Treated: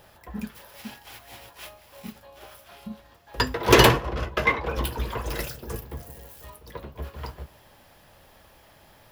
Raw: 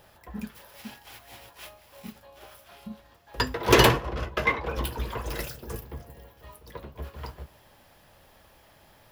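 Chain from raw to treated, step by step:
0:05.91–0:06.50: spike at every zero crossing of −43 dBFS
level +2.5 dB

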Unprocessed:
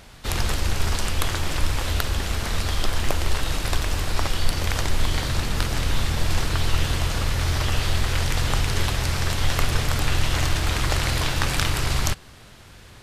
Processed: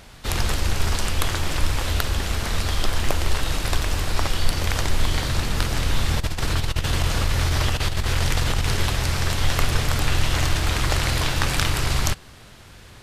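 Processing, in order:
0:06.08–0:08.78: compressor whose output falls as the input rises −21 dBFS, ratio −0.5
level +1 dB

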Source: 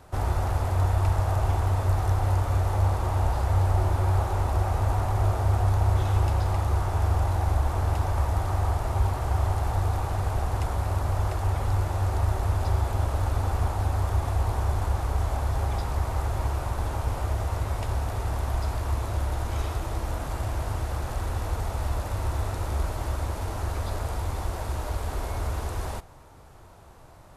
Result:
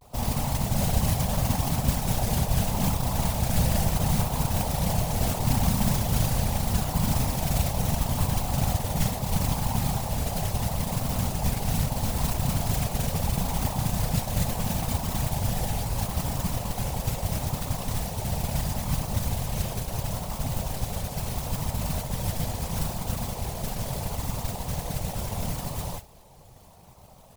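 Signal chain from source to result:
phaser with its sweep stopped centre 640 Hz, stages 4
noise that follows the level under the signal 10 dB
random phases in short frames
pitch vibrato 0.75 Hz 88 cents

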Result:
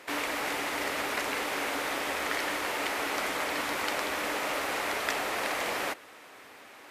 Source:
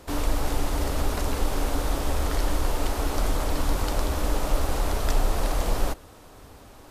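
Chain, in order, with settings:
high-pass filter 300 Hz 12 dB per octave
parametric band 2,100 Hz +13.5 dB 1.2 octaves
level −3.5 dB

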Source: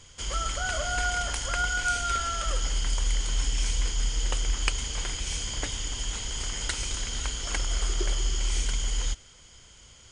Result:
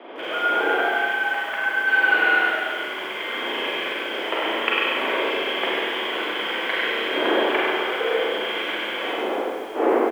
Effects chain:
0:01.87–0:02.41: each half-wave held at its own peak
wind on the microphone 490 Hz −41 dBFS
in parallel at +2.5 dB: downward compressor 12 to 1, threshold −33 dBFS, peak gain reduction 14 dB
on the sum: single-sideband voice off tune +100 Hz 190–2,700 Hz
four-comb reverb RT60 1.2 s, combs from 33 ms, DRR −4.5 dB
speech leveller within 5 dB 2 s
on a send: multi-tap delay 58/99/351 ms −19/−7.5/−18.5 dB
on the sum: feedback echo at a low word length 141 ms, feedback 35%, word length 7 bits, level −9 dB

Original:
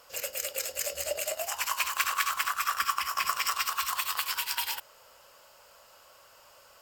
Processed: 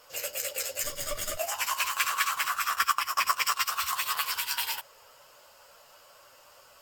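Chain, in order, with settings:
0:00.83–0:01.37: lower of the sound and its delayed copy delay 0.58 ms
multi-voice chorus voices 4, 0.88 Hz, delay 11 ms, depth 4.5 ms
0:02.72–0:03.69: transient designer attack +4 dB, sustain −8 dB
level +4 dB

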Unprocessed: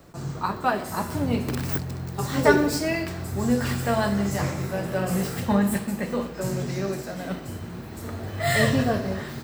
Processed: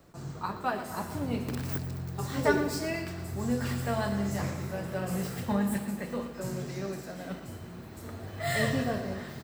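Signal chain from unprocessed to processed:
repeating echo 114 ms, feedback 58%, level −13 dB
level −7.5 dB

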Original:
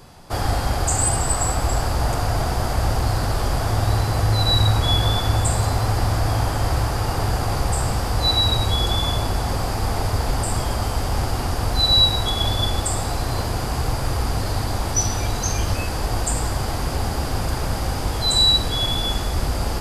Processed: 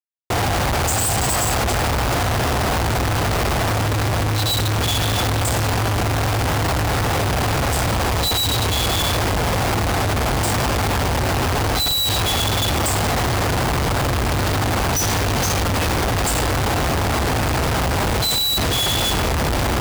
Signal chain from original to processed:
high-pass filter 66 Hz 12 dB per octave
comparator with hysteresis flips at −32 dBFS
level +3 dB

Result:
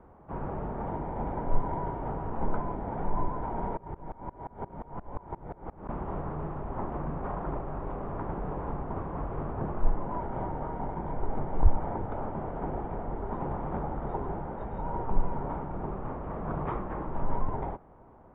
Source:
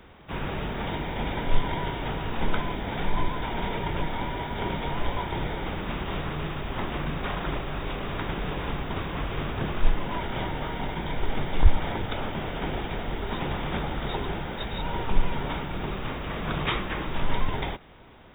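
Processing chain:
transistor ladder low-pass 1,200 Hz, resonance 30%
0:03.77–0:05.89: tremolo with a ramp in dB swelling 5.7 Hz, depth 25 dB
level +3 dB

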